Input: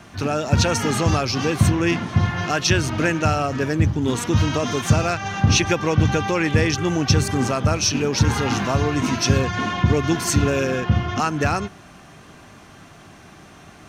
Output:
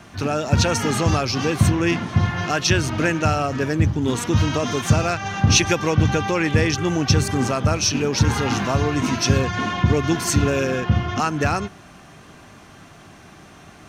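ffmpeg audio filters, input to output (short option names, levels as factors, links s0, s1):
-filter_complex "[0:a]asettb=1/sr,asplit=3[s0][s1][s2];[s0]atrim=end=5.504[s3];[s1]atrim=start=5.5:end=5.91,asetpts=PTS-STARTPTS,afade=t=in:d=0.004:c=qsin,afade=t=out:st=0.406:d=0.004:c=qsin,highshelf=f=4600:g=6[s4];[s2]atrim=start=5.906[s5];[s3][s4]acrossfade=d=0.004:c1=hsin:c2=qsin[s6];[s6][s5]acrossfade=d=0.004:c1=qsin:c2=hsin"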